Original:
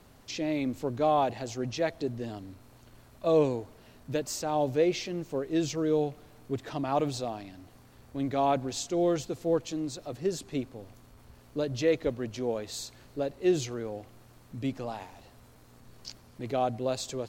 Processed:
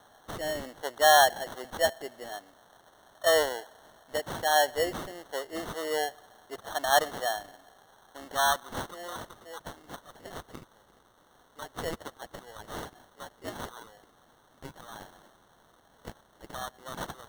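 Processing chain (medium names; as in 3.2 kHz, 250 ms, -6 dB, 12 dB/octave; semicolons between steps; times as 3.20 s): high-pass sweep 730 Hz -> 1.6 kHz, 7.89–9.29 s; sample-and-hold 18×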